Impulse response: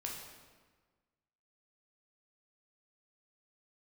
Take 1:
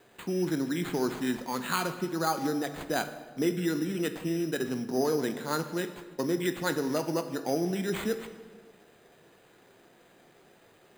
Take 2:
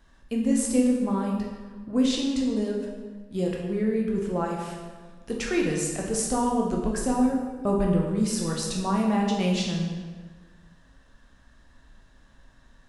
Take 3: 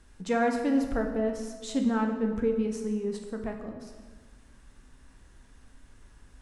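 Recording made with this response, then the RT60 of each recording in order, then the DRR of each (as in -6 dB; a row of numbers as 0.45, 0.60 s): 2; 1.4, 1.4, 1.4 s; 8.0, -1.5, 3.0 dB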